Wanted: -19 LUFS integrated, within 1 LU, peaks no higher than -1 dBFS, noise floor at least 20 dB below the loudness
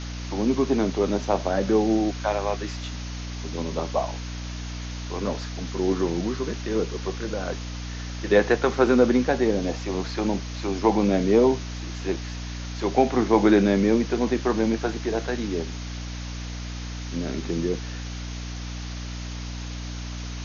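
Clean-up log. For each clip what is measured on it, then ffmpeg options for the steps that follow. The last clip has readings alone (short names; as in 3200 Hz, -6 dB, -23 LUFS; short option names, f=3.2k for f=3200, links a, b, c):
hum 60 Hz; harmonics up to 300 Hz; hum level -31 dBFS; noise floor -33 dBFS; noise floor target -46 dBFS; loudness -25.5 LUFS; peak -5.5 dBFS; loudness target -19.0 LUFS
-> -af "bandreject=f=60:t=h:w=6,bandreject=f=120:t=h:w=6,bandreject=f=180:t=h:w=6,bandreject=f=240:t=h:w=6,bandreject=f=300:t=h:w=6"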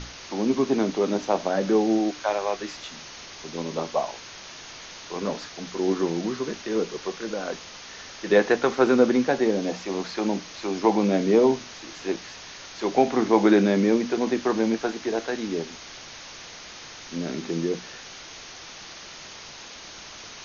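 hum none; noise floor -42 dBFS; noise floor target -45 dBFS
-> -af "afftdn=nr=6:nf=-42"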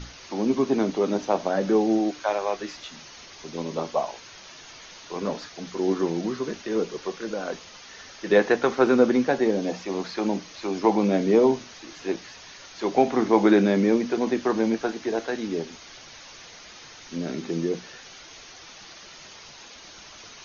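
noise floor -46 dBFS; loudness -24.5 LUFS; peak -5.0 dBFS; loudness target -19.0 LUFS
-> -af "volume=5.5dB,alimiter=limit=-1dB:level=0:latency=1"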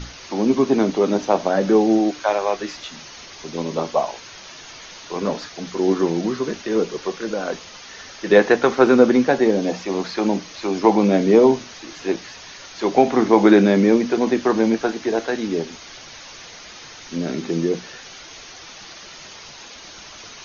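loudness -19.0 LUFS; peak -1.0 dBFS; noise floor -40 dBFS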